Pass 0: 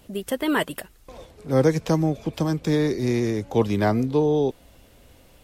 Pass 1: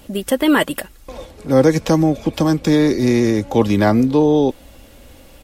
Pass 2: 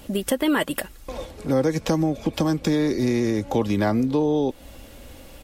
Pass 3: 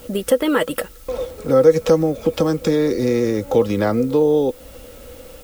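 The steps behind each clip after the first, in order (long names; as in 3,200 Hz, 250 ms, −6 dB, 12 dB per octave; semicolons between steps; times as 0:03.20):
comb filter 3.6 ms, depth 33%; in parallel at −1.5 dB: brickwall limiter −16 dBFS, peak gain reduction 9.5 dB; on the sum: level +3 dB
downward compressor 2.5 to 1, threshold −21 dBFS, peak gain reduction 9.5 dB
hollow resonant body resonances 490/1,300 Hz, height 15 dB, ringing for 70 ms; background noise blue −50 dBFS; level +1 dB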